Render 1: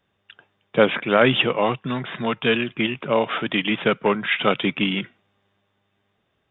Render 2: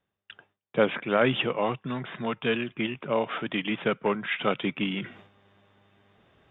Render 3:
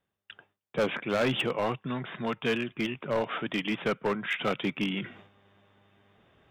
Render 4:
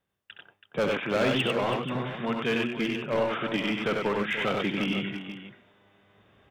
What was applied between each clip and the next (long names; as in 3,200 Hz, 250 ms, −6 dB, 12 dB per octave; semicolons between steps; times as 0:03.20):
low-pass filter 3,100 Hz 6 dB per octave; noise gate with hold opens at −51 dBFS; reversed playback; upward compression, threshold −27 dBFS; reversed playback; level −6 dB
hard clipping −20.5 dBFS, distortion −11 dB; level −1 dB
multi-tap delay 66/96/328/483 ms −8/−3.5/−10/−12.5 dB